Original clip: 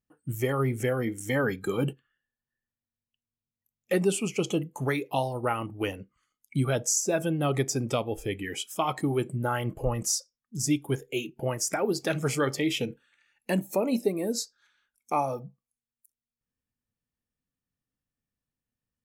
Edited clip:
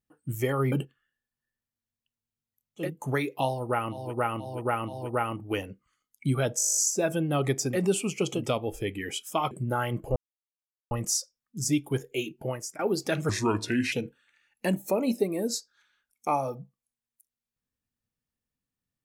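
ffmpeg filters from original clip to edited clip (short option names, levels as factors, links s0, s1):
-filter_complex "[0:a]asplit=23[s0][s1][s2][s3][s4][s5][s6][s7][s8][s9][s10][s11][s12][s13][s14][s15][s16][s17][s18][s19][s20][s21][s22];[s0]atrim=end=0.722[s23];[s1]atrim=start=1.798:end=4[s24];[s2]atrim=start=4.5:end=5.88[s25];[s3]atrim=start=5.16:end=5.88[s26];[s4]atrim=start=5.16:end=5.88[s27];[s5]atrim=start=5.16:end=6.892[s28];[s6]atrim=start=6.868:end=6.892[s29];[s7]atrim=start=6.868:end=6.892[s30];[s8]atrim=start=6.868:end=6.892[s31];[s9]atrim=start=6.868:end=6.892[s32];[s10]atrim=start=6.868:end=6.892[s33];[s11]atrim=start=6.868:end=6.892[s34];[s12]atrim=start=6.868:end=6.892[s35];[s13]atrim=start=6.868:end=6.892[s36];[s14]atrim=start=6.868:end=6.892[s37];[s15]atrim=start=6.868:end=7.92[s38];[s16]atrim=start=3.84:end=4.66[s39];[s17]atrim=start=7.76:end=8.952[s40];[s18]atrim=start=9.238:end=9.89,asetpts=PTS-STARTPTS,afade=t=out:st=0.648:d=0.004:c=hsin,apad=pad_dur=0.75[s41];[s19]atrim=start=9.89:end=11.77,asetpts=PTS-STARTPTS,afade=t=in:d=0.004:c=hsin,afade=t=out:st=1.48:d=0.4:silence=0.0794328[s42];[s20]atrim=start=11.77:end=12.274,asetpts=PTS-STARTPTS,afade=t=in:d=0.004:c=hsin:silence=0.0794328[s43];[s21]atrim=start=12.27:end=12.77,asetpts=PTS-STARTPTS,asetrate=34839,aresample=44100,atrim=end_sample=27911,asetpts=PTS-STARTPTS[s44];[s22]atrim=start=12.766[s45];[s23][s24]acrossfade=d=0.004:c1=hsin:c2=hsin[s46];[s46][s25]acrossfade=d=0.16:c1=tri:c2=tri[s47];[s47][s26]acrossfade=d=0.24:c1=tri:c2=tri[s48];[s48][s27]acrossfade=d=0.24:c1=tri:c2=tri[s49];[s49][s28]acrossfade=d=0.24:c1=tri:c2=tri[s50];[s50][s29]acrossfade=d=0.004:c1=hsin:c2=hsin[s51];[s51][s30]acrossfade=d=0.004:c1=hsin:c2=hsin[s52];[s52][s31]acrossfade=d=0.004:c1=hsin:c2=hsin[s53];[s53][s32]acrossfade=d=0.004:c1=hsin:c2=hsin[s54];[s54][s33]acrossfade=d=0.004:c1=hsin:c2=hsin[s55];[s55][s34]acrossfade=d=0.004:c1=hsin:c2=hsin[s56];[s56][s35]acrossfade=d=0.004:c1=hsin:c2=hsin[s57];[s57][s36]acrossfade=d=0.004:c1=hsin:c2=hsin[s58];[s58][s37]acrossfade=d=0.004:c1=hsin:c2=hsin[s59];[s59][s38]acrossfade=d=0.004:c1=hsin:c2=hsin[s60];[s60][s39]acrossfade=d=0.16:c1=tri:c2=tri[s61];[s61][s40]acrossfade=d=0.16:c1=tri:c2=tri[s62];[s41][s42][s43]concat=n=3:v=0:a=1[s63];[s62][s63]acrossfade=d=0.004:c1=hsin:c2=hsin[s64];[s64][s44]acrossfade=d=0.004:c1=hsin:c2=hsin[s65];[s65][s45]acrossfade=d=0.004:c1=hsin:c2=hsin"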